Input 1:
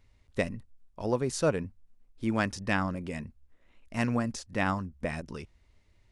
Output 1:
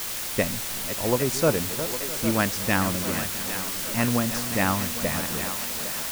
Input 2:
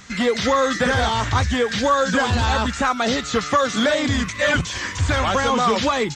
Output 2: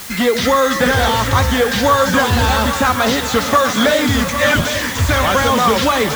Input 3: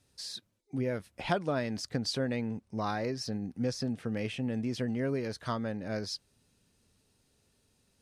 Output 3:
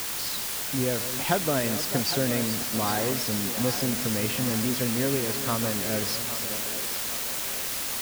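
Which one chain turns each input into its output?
backward echo that repeats 329 ms, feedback 43%, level -11 dB; word length cut 6-bit, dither triangular; thinning echo 808 ms, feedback 67%, high-pass 300 Hz, level -10.5 dB; trim +4.5 dB

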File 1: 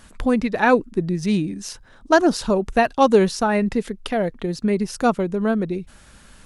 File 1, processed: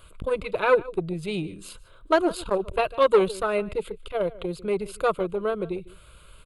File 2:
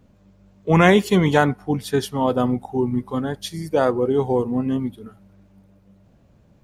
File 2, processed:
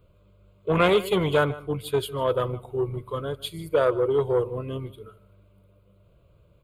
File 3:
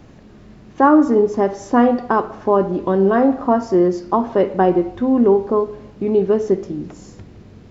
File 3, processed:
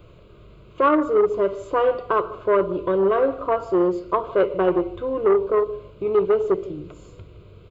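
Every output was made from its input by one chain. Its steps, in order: static phaser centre 1.2 kHz, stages 8; echo from a far wall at 26 m, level -19 dB; transformer saturation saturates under 620 Hz

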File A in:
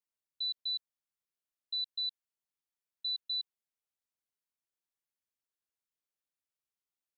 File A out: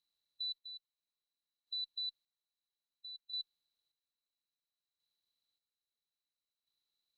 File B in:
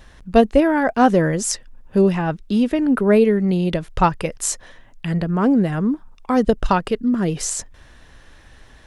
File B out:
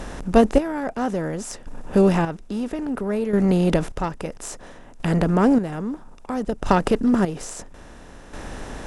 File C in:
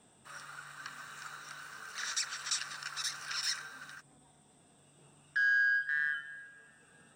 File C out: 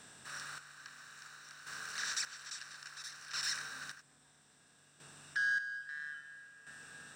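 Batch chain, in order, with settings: spectral levelling over time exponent 0.6; bass shelf 400 Hz +4.5 dB; Chebyshev shaper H 2 -16 dB, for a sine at 4 dBFS; square tremolo 0.6 Hz, depth 65%, duty 35%; trim -5 dB

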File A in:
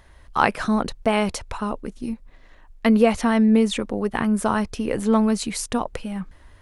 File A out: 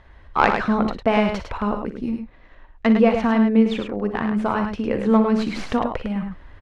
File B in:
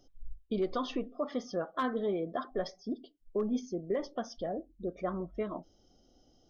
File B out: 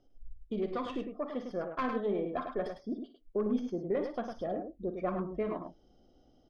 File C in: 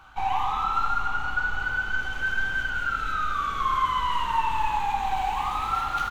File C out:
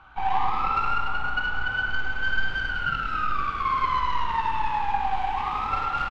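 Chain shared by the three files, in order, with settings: tracing distortion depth 0.11 ms; low-pass 3 kHz 12 dB/octave; gain riding within 5 dB 2 s; on a send: multi-tap echo 44/58/104 ms -14.5/-12.5/-6.5 dB; on the sum: trim -1 dB

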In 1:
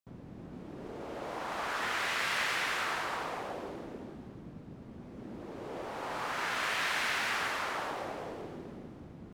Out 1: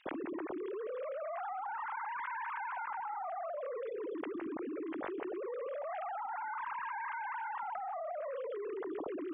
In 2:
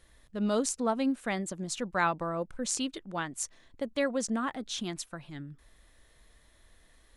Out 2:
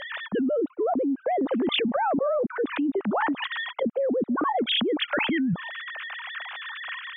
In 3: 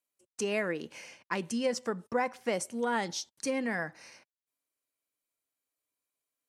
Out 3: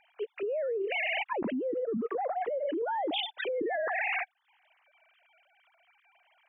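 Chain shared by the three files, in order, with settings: formants replaced by sine waves; low-pass that closes with the level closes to 380 Hz, closed at -30.5 dBFS; level flattener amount 100%; trim -4 dB

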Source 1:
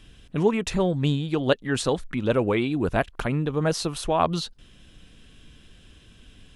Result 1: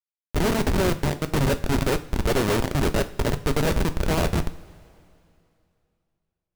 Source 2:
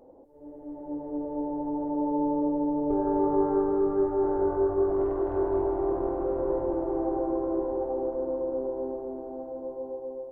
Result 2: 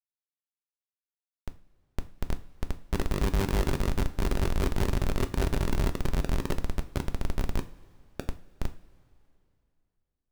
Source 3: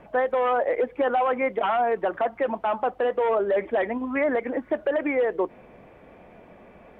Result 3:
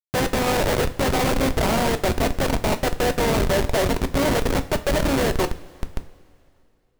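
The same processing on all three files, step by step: spectral levelling over time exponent 0.4; Schmitt trigger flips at -16 dBFS; two-slope reverb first 0.34 s, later 2.7 s, from -19 dB, DRR 8.5 dB

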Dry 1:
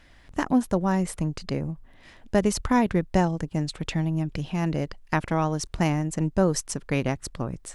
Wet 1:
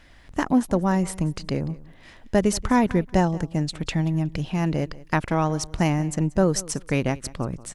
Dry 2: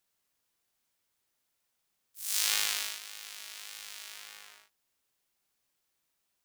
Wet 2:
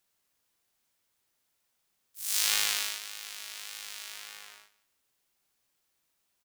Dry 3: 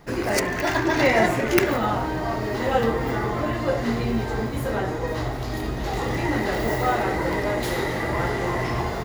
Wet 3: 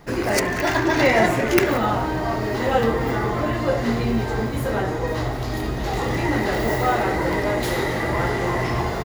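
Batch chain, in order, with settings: in parallel at -9.5 dB: saturation -16.5 dBFS; on the sum: feedback delay 183 ms, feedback 18%, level -20 dB

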